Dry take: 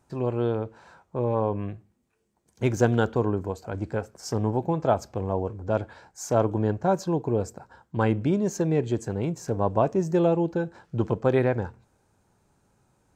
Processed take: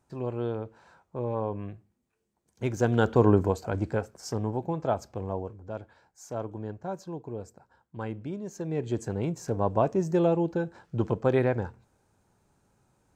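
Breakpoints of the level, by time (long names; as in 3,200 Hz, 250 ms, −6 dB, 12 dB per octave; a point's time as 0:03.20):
0:02.77 −5.5 dB
0:03.33 +6.5 dB
0:04.47 −5 dB
0:05.32 −5 dB
0:05.74 −12 dB
0:08.50 −12 dB
0:09.00 −2 dB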